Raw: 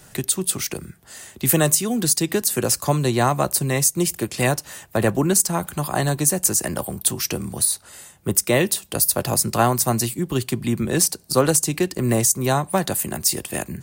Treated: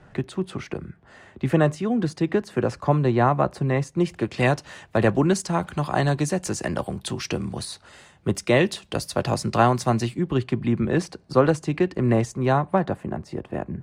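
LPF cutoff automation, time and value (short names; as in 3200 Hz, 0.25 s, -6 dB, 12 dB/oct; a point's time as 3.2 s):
3.85 s 1800 Hz
4.54 s 3700 Hz
9.82 s 3700 Hz
10.5 s 2200 Hz
12.51 s 2200 Hz
13.07 s 1100 Hz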